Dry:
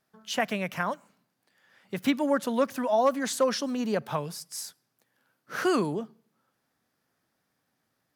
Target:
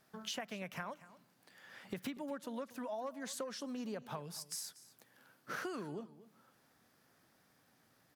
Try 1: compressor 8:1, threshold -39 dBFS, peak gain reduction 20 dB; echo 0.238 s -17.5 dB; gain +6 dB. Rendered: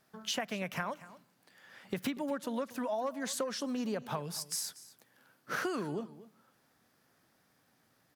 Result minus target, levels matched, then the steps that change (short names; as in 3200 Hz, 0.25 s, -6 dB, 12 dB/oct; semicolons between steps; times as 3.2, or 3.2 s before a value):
compressor: peak gain reduction -7 dB
change: compressor 8:1, threshold -47 dBFS, peak gain reduction 27 dB